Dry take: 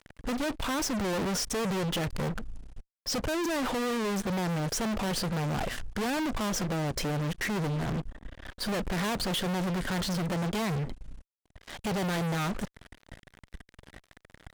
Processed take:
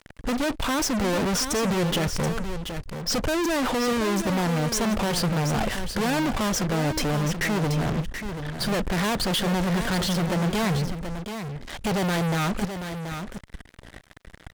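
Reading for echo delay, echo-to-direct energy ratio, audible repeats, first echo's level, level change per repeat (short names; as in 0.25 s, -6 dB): 0.73 s, -8.5 dB, 1, -8.5 dB, no steady repeat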